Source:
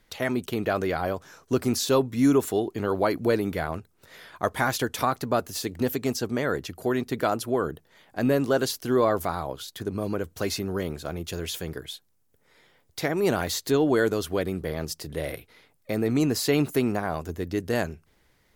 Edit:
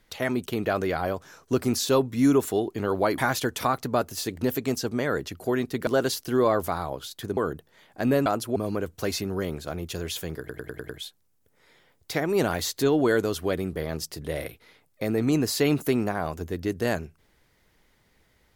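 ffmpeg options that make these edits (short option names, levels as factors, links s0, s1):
-filter_complex "[0:a]asplit=11[s0][s1][s2][s3][s4][s5][s6][s7][s8][s9][s10];[s0]atrim=end=3.182[s11];[s1]atrim=start=4.558:end=7.252[s12];[s2]atrim=start=8.438:end=9.942[s13];[s3]atrim=start=7.548:end=8.442[s14];[s4]atrim=start=7.248:end=7.552[s15];[s5]atrim=start=9.938:end=11.872[s16];[s6]atrim=start=11.768:end=11.872[s17];[s7]atrim=start=11.768:end=11.872[s18];[s8]atrim=start=11.768:end=11.872[s19];[s9]atrim=start=11.768:end=11.872[s20];[s10]atrim=start=11.768[s21];[s11][s12]acrossfade=d=0.004:c1=hsin:c2=hsin[s22];[s22][s13]acrossfade=d=0.004:c1=hsin:c2=hsin[s23];[s23][s14]acrossfade=d=0.004:c1=hsin:c2=hsin[s24];[s24][s15]acrossfade=d=0.004:c1=hsin:c2=hsin[s25];[s25][s16]acrossfade=d=0.004:c1=hsin:c2=hsin[s26];[s26][s17]acrossfade=d=0.004:c1=hsin:c2=hsin[s27];[s27][s18]acrossfade=d=0.004:c1=hsin:c2=hsin[s28];[s28][s19]acrossfade=d=0.004:c1=hsin:c2=hsin[s29];[s29][s20]acrossfade=d=0.004:c1=hsin:c2=hsin[s30];[s30][s21]acrossfade=d=0.004:c1=hsin:c2=hsin"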